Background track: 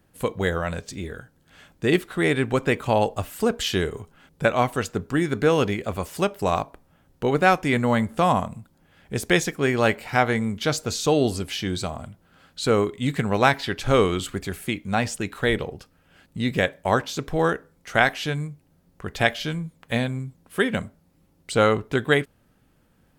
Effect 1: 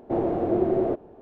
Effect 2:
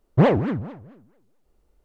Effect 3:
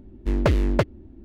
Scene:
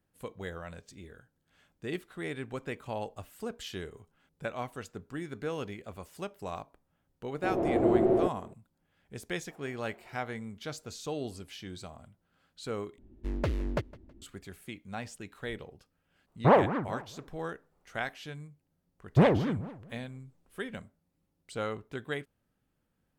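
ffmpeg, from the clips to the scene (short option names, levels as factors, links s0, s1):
-filter_complex "[1:a]asplit=2[s0][s1];[2:a]asplit=2[s2][s3];[0:a]volume=0.158[s4];[s0]dynaudnorm=f=190:g=3:m=2.66[s5];[s1]highpass=1400[s6];[3:a]aecho=1:1:161|322:0.0841|0.0286[s7];[s2]equalizer=f=1000:t=o:w=2.2:g=14[s8];[s3]aresample=22050,aresample=44100[s9];[s4]asplit=2[s10][s11];[s10]atrim=end=12.984[s12];[s7]atrim=end=1.24,asetpts=PTS-STARTPTS,volume=0.282[s13];[s11]atrim=start=14.216[s14];[s5]atrim=end=1.21,asetpts=PTS-STARTPTS,volume=0.355,afade=t=in:d=0.004:c=hsin,afade=t=out:st=1.206:d=0.004:c=hsin,adelay=7330[s15];[s6]atrim=end=1.21,asetpts=PTS-STARTPTS,volume=0.133,afade=t=in:d=0.004:c=hsin,afade=t=out:st=1.206:d=0.004:c=hsin,adelay=413658S[s16];[s8]atrim=end=1.84,asetpts=PTS-STARTPTS,volume=0.282,afade=t=in:d=0.004:c=hsin,afade=t=out:st=1.836:d=0.004:c=hsin,adelay=16270[s17];[s9]atrim=end=1.84,asetpts=PTS-STARTPTS,volume=0.531,afade=t=in:d=0.004:c=hsin,afade=t=out:st=1.836:d=0.004:c=hsin,adelay=18990[s18];[s12][s13]acrossfade=d=0.004:c1=hsin:c2=hsin[s19];[s19][s14]acrossfade=d=0.004:c1=hsin:c2=hsin[s20];[s20][s15][s16][s17][s18]amix=inputs=5:normalize=0"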